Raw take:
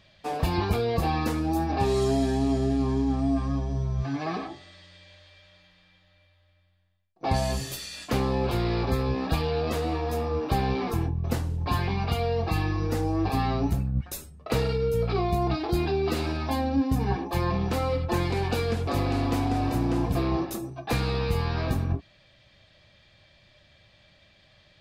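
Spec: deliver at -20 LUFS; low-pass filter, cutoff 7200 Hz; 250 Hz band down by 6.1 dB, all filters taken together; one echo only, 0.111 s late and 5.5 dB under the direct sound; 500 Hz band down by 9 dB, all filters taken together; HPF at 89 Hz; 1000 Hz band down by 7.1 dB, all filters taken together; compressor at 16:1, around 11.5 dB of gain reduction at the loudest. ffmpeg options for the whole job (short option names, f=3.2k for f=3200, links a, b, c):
-af "highpass=89,lowpass=7.2k,equalizer=f=250:t=o:g=-4.5,equalizer=f=500:t=o:g=-9,equalizer=f=1k:t=o:g=-5.5,acompressor=threshold=-37dB:ratio=16,aecho=1:1:111:0.531,volume=21dB"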